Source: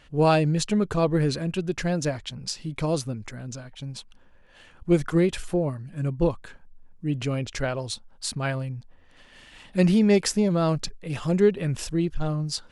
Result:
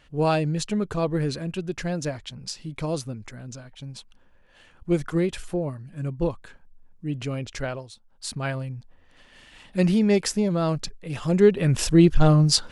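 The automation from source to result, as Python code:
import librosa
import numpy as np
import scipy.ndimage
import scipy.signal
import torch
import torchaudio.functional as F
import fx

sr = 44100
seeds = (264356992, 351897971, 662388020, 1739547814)

y = fx.gain(x, sr, db=fx.line((7.75, -2.5), (7.91, -14.0), (8.33, -1.0), (11.14, -1.0), (12.06, 10.5)))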